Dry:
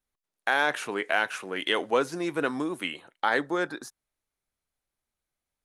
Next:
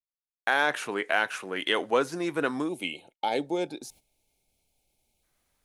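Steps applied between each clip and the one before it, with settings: spectral gain 2.69–5.23, 920–2100 Hz -18 dB; gate -54 dBFS, range -27 dB; reverse; upward compressor, threshold -43 dBFS; reverse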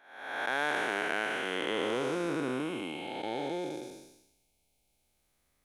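time blur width 0.482 s; gain +1 dB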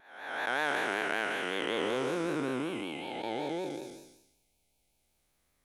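vibrato 5.3 Hz 91 cents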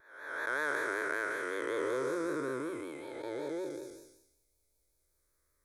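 fixed phaser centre 770 Hz, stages 6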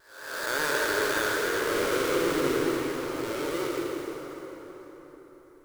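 half-waves squared off; plate-style reverb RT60 4.7 s, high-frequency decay 0.6×, DRR -1.5 dB

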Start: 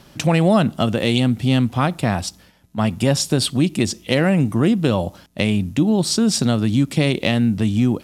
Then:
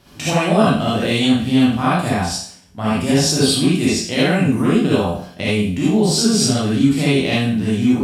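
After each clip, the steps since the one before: spectral trails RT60 0.54 s; non-linear reverb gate 0.1 s rising, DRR -7.5 dB; gain -7.5 dB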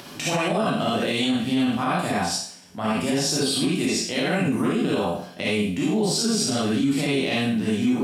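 Bessel high-pass 200 Hz, order 2; upward compressor, threshold -29 dBFS; limiter -12 dBFS, peak gain reduction 9 dB; gain -2 dB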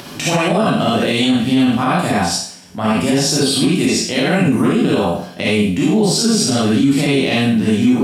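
low shelf 200 Hz +4 dB; gain +7 dB

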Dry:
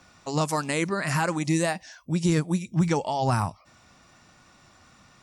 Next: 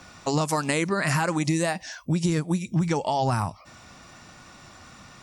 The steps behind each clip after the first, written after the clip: compressor, threshold -29 dBFS, peak gain reduction 11 dB; gain +8 dB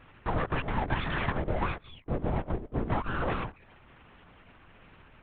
rippled Chebyshev low-pass 1800 Hz, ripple 9 dB; full-wave rectifier; LPC vocoder at 8 kHz whisper

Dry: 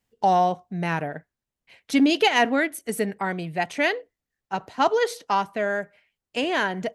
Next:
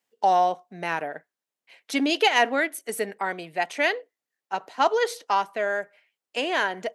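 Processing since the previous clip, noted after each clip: HPF 380 Hz 12 dB/oct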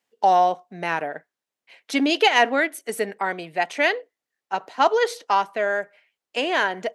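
high shelf 9100 Hz -7 dB; gain +3 dB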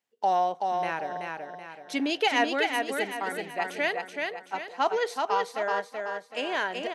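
feedback echo 0.379 s, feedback 42%, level -4 dB; gain -7.5 dB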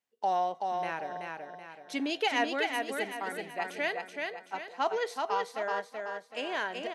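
resonator 220 Hz, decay 0.63 s, harmonics odd, mix 50%; gain +1.5 dB

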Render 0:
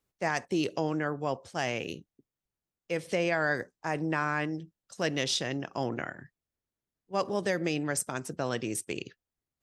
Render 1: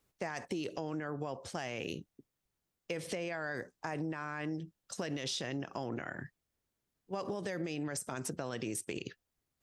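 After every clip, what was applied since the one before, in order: limiter -27 dBFS, peak gain reduction 11.5 dB; compressor, threshold -39 dBFS, peak gain reduction 8 dB; gain +5 dB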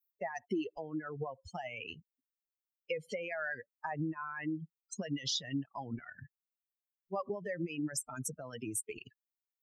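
per-bin expansion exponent 3; gain +7 dB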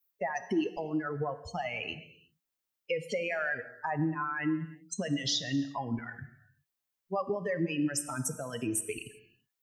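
in parallel at +1.5 dB: limiter -31.5 dBFS, peak gain reduction 8.5 dB; on the sum: non-linear reverb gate 0.4 s falling, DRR 10.5 dB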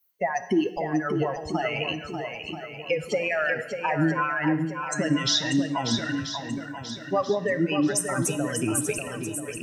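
moving spectral ripple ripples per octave 1.9, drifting +0.51 Hz, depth 6 dB; swung echo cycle 0.984 s, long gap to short 1.5:1, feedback 37%, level -7 dB; gain +6.5 dB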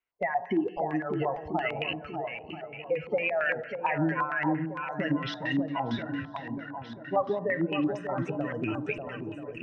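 air absorption 120 m; LFO low-pass square 4.4 Hz 870–2400 Hz; gain -5 dB

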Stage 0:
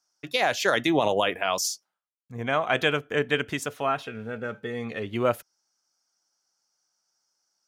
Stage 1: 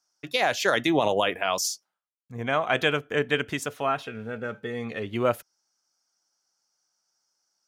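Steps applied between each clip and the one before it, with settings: nothing audible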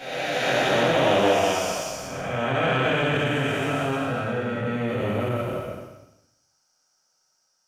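time blur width 0.667 s; shoebox room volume 67 m³, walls mixed, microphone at 2 m; core saturation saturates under 760 Hz

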